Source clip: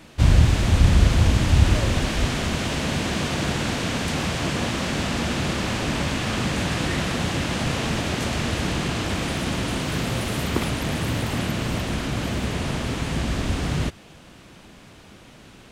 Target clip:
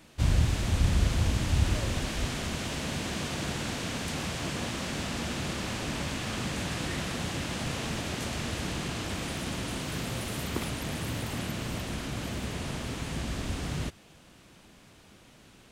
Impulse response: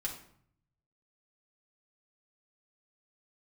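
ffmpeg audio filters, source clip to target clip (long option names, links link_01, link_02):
-af "highshelf=frequency=5800:gain=6,volume=-9dB"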